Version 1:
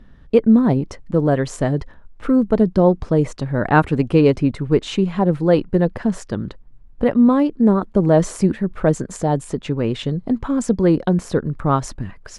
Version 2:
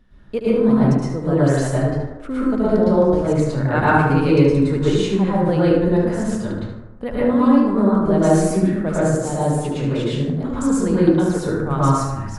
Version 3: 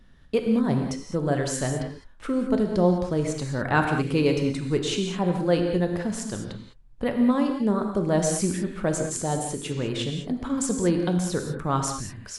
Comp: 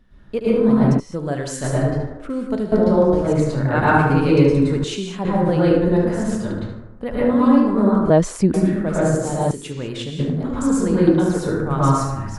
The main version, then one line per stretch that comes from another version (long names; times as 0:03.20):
2
0:01.00–0:01.64: punch in from 3
0:02.30–0:02.72: punch in from 3
0:04.84–0:05.25: punch in from 3
0:08.10–0:08.54: punch in from 1
0:09.51–0:10.19: punch in from 3